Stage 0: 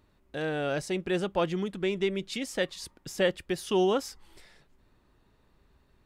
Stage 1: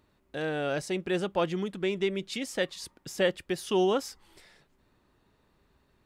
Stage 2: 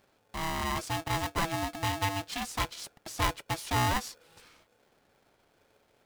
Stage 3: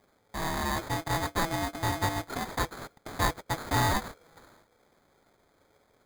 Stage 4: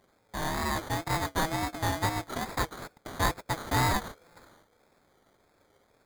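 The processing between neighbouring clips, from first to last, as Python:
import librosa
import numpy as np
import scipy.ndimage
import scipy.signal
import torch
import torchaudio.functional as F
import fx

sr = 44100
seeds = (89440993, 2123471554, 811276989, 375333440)

y1 = fx.low_shelf(x, sr, hz=63.0, db=-9.5)
y2 = fx.diode_clip(y1, sr, knee_db=-28.5)
y2 = y2 * np.sign(np.sin(2.0 * np.pi * 490.0 * np.arange(len(y2)) / sr))
y3 = fx.sample_hold(y2, sr, seeds[0], rate_hz=2800.0, jitter_pct=0)
y3 = y3 * librosa.db_to_amplitude(1.5)
y4 = fx.wow_flutter(y3, sr, seeds[1], rate_hz=2.1, depth_cents=89.0)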